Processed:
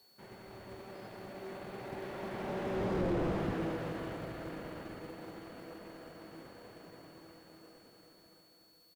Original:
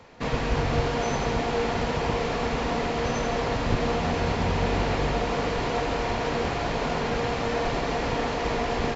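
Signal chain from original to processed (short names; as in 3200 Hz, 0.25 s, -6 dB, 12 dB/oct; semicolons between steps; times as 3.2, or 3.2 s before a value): ending faded out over 2.30 s; Doppler pass-by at 3.09, 29 m/s, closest 5.2 m; three-band isolator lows -15 dB, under 150 Hz, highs -15 dB, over 4900 Hz; whine 5900 Hz -66 dBFS; pitch shift -5 st; companded quantiser 6-bit; slew limiter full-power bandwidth 11 Hz; gain +1.5 dB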